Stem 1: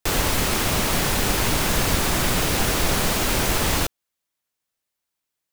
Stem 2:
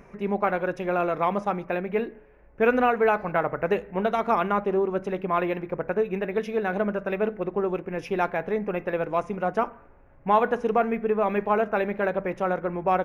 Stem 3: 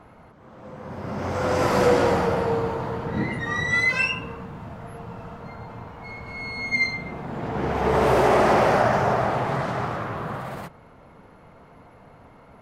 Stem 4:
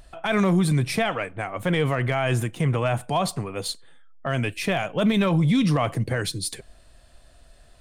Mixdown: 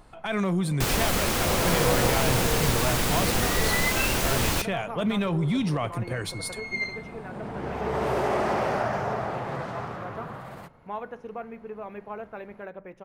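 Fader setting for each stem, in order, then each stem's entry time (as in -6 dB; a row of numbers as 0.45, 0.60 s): -4.0, -14.5, -7.5, -5.5 dB; 0.75, 0.60, 0.00, 0.00 s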